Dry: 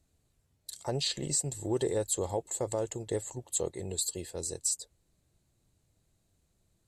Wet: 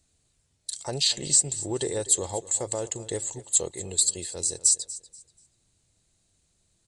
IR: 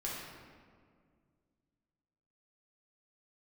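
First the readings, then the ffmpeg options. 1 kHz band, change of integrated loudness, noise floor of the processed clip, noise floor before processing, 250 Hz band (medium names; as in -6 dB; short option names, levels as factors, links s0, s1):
+1.5 dB, +8.0 dB, -71 dBFS, -75 dBFS, +0.5 dB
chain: -filter_complex "[0:a]aresample=22050,aresample=44100,highshelf=f=2200:g=11,asplit=2[s0][s1];[s1]aecho=0:1:241|482|723:0.141|0.0381|0.0103[s2];[s0][s2]amix=inputs=2:normalize=0"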